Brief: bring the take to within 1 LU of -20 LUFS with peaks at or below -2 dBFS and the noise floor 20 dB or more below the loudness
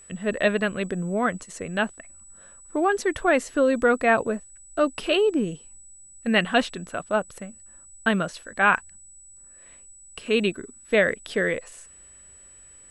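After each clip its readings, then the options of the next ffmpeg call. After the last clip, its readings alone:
steady tone 7.9 kHz; tone level -47 dBFS; loudness -24.5 LUFS; peak level -5.5 dBFS; loudness target -20.0 LUFS
-> -af "bandreject=f=7900:w=30"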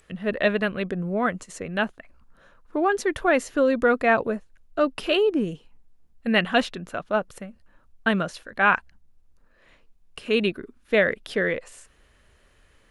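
steady tone not found; loudness -24.5 LUFS; peak level -5.5 dBFS; loudness target -20.0 LUFS
-> -af "volume=1.68,alimiter=limit=0.794:level=0:latency=1"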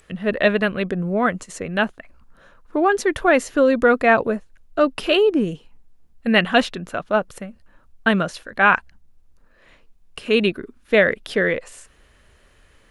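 loudness -20.0 LUFS; peak level -2.0 dBFS; noise floor -56 dBFS

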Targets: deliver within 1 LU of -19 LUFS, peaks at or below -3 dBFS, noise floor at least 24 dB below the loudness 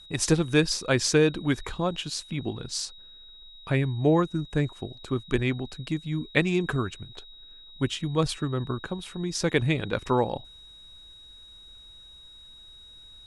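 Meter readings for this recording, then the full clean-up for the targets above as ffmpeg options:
steady tone 3.8 kHz; tone level -47 dBFS; loudness -27.0 LUFS; peak level -7.0 dBFS; loudness target -19.0 LUFS
-> -af "bandreject=f=3800:w=30"
-af "volume=2.51,alimiter=limit=0.708:level=0:latency=1"

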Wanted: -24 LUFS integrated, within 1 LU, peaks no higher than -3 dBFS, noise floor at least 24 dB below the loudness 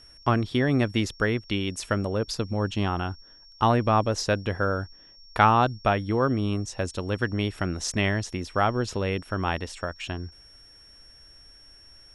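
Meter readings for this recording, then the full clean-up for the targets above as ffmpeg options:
steady tone 5.5 kHz; tone level -50 dBFS; loudness -26.0 LUFS; peak level -3.5 dBFS; loudness target -24.0 LUFS
-> -af "bandreject=f=5500:w=30"
-af "volume=1.26,alimiter=limit=0.708:level=0:latency=1"

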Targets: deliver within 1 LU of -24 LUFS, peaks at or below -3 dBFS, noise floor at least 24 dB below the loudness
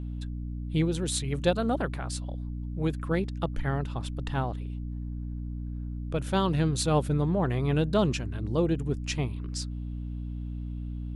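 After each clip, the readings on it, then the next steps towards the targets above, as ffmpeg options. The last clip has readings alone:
hum 60 Hz; highest harmonic 300 Hz; hum level -32 dBFS; loudness -30.0 LUFS; peak level -12.0 dBFS; loudness target -24.0 LUFS
-> -af "bandreject=f=60:t=h:w=4,bandreject=f=120:t=h:w=4,bandreject=f=180:t=h:w=4,bandreject=f=240:t=h:w=4,bandreject=f=300:t=h:w=4"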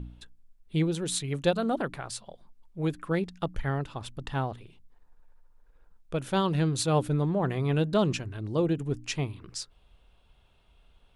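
hum not found; loudness -29.5 LUFS; peak level -12.5 dBFS; loudness target -24.0 LUFS
-> -af "volume=1.88"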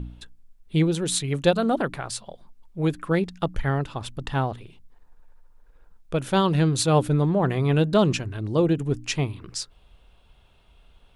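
loudness -24.0 LUFS; peak level -7.0 dBFS; noise floor -57 dBFS

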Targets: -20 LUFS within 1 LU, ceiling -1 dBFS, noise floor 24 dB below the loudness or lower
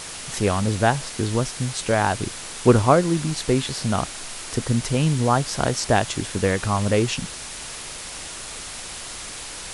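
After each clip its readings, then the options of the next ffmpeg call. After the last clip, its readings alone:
noise floor -35 dBFS; noise floor target -47 dBFS; loudness -23.0 LUFS; peak level -2.0 dBFS; loudness target -20.0 LUFS
-> -af "afftdn=nr=12:nf=-35"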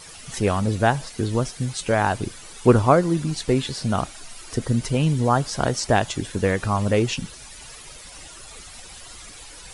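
noise floor -42 dBFS; noise floor target -47 dBFS
-> -af "afftdn=nr=6:nf=-42"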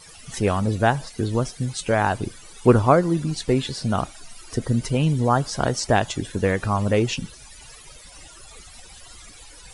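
noise floor -45 dBFS; noise floor target -47 dBFS
-> -af "afftdn=nr=6:nf=-45"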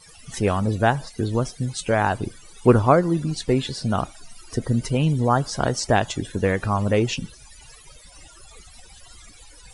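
noise floor -48 dBFS; loudness -22.5 LUFS; peak level -2.5 dBFS; loudness target -20.0 LUFS
-> -af "volume=1.33,alimiter=limit=0.891:level=0:latency=1"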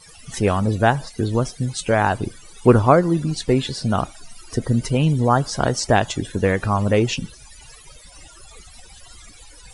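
loudness -20.0 LUFS; peak level -1.0 dBFS; noise floor -45 dBFS

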